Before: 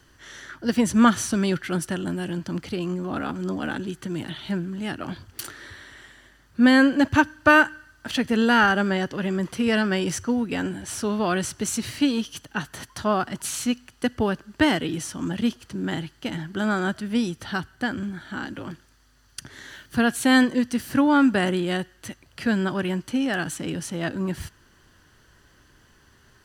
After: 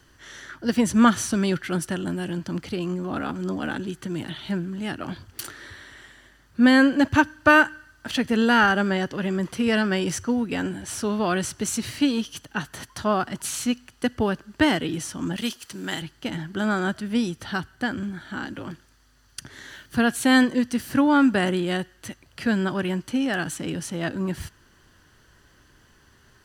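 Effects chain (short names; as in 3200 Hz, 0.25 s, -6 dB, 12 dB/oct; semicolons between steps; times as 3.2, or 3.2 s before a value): 15.36–16.02 tilt +3 dB/oct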